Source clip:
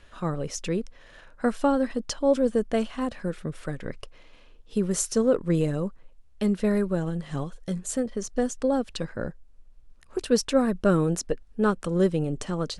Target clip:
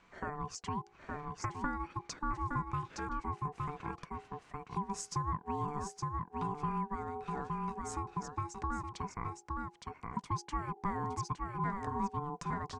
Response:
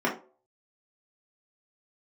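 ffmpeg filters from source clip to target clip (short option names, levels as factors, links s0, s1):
-filter_complex "[0:a]highpass=f=110:w=0.5412,highpass=f=110:w=1.3066,equalizer=f=220:t=q:w=4:g=-9,equalizer=f=420:t=q:w=4:g=9,equalizer=f=860:t=q:w=4:g=8,equalizer=f=2900:t=q:w=4:g=-8,equalizer=f=4200:t=q:w=4:g=-8,lowpass=f=7200:w=0.5412,lowpass=f=7200:w=1.3066,bandreject=f=60:t=h:w=6,bandreject=f=120:t=h:w=6,bandreject=f=180:t=h:w=6,bandreject=f=240:t=h:w=6,asplit=2[s0][s1];[s1]aecho=0:1:865:0.501[s2];[s0][s2]amix=inputs=2:normalize=0,acompressor=threshold=0.0282:ratio=2.5,aeval=exprs='val(0)*sin(2*PI*590*n/s)':c=same,volume=0.668"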